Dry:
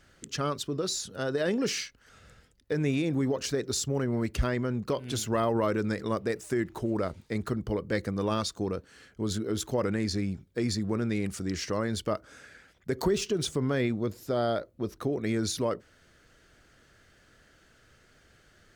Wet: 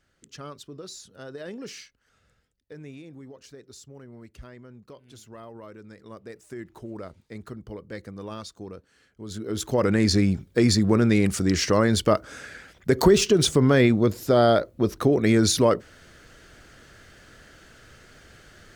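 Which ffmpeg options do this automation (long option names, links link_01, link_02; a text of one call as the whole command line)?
ffmpeg -i in.wav -af "volume=17dB,afade=type=out:start_time=1.82:duration=1.33:silence=0.446684,afade=type=in:start_time=5.89:duration=0.86:silence=0.375837,afade=type=in:start_time=9.26:duration=0.39:silence=0.266073,afade=type=in:start_time=9.65:duration=0.46:silence=0.473151" out.wav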